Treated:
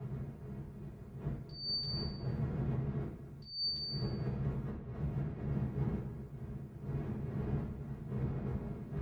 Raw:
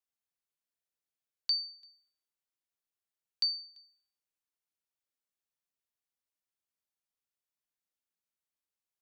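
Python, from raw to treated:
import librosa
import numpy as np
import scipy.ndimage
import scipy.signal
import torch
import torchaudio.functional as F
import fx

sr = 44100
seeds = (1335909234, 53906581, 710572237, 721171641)

y = fx.dmg_wind(x, sr, seeds[0], corner_hz=190.0, level_db=-46.0)
y = fx.over_compress(y, sr, threshold_db=-48.0, ratio=-1.0)
y = scipy.signal.sosfilt(scipy.signal.butter(2, 50.0, 'highpass', fs=sr, output='sos'), y)
y = fx.peak_eq(y, sr, hz=1900.0, db=5.5, octaves=1.1)
y = y + 10.0 ** (-12.0 / 20.0) * np.pad(y, (int(252 * sr / 1000.0), 0))[:len(y)]
y = fx.rev_fdn(y, sr, rt60_s=0.58, lf_ratio=1.05, hf_ratio=0.9, size_ms=43.0, drr_db=-7.5)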